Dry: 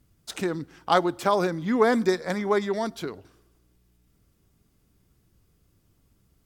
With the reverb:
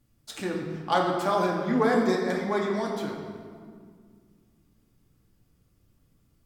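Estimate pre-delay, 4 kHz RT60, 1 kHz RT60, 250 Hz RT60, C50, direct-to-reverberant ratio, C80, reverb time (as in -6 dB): 3 ms, 1.2 s, 1.9 s, 2.9 s, 2.5 dB, -2.0 dB, 4.0 dB, 2.0 s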